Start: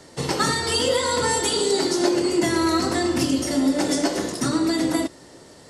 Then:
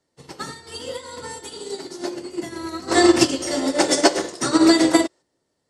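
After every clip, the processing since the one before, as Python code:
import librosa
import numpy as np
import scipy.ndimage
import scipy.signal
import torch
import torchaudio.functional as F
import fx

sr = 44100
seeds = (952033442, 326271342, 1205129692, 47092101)

y = fx.spec_box(x, sr, start_s=2.88, length_s=2.34, low_hz=310.0, high_hz=9400.0, gain_db=9)
y = fx.upward_expand(y, sr, threshold_db=-31.0, expansion=2.5)
y = F.gain(torch.from_numpy(y), 2.5).numpy()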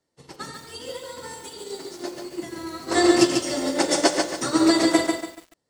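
y = fx.echo_feedback(x, sr, ms=89, feedback_pct=49, wet_db=-19.0)
y = fx.echo_crushed(y, sr, ms=143, feedback_pct=35, bits=7, wet_db=-4.5)
y = F.gain(torch.from_numpy(y), -4.0).numpy()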